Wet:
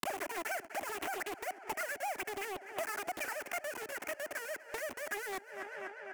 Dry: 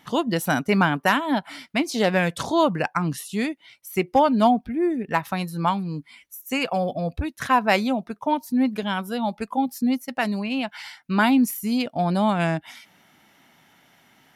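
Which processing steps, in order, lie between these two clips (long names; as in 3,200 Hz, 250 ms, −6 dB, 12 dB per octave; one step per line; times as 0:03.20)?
parametric band 440 Hz +13.5 dB 2.9 octaves
comparator with hysteresis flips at −22.5 dBFS
brickwall limiter −17 dBFS, peak gain reduction 9.5 dB
high-pass filter 120 Hz 12 dB per octave
high-shelf EQ 8,500 Hz +10 dB
tape delay 577 ms, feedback 78%, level −17 dB, low-pass 1,700 Hz
wrong playback speed 33 rpm record played at 78 rpm
downward compressor 20 to 1, threshold −32 dBFS, peak gain reduction 17.5 dB
phaser with its sweep stopped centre 750 Hz, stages 8
highs frequency-modulated by the lows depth 0.75 ms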